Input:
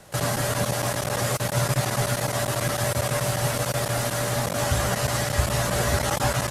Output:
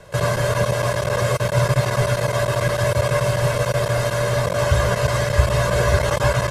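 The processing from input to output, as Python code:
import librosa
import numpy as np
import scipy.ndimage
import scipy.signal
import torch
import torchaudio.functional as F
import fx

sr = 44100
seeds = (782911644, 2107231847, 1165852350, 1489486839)

y = fx.lowpass(x, sr, hz=2800.0, slope=6)
y = y + 0.68 * np.pad(y, (int(1.9 * sr / 1000.0), 0))[:len(y)]
y = y * 10.0 ** (4.0 / 20.0)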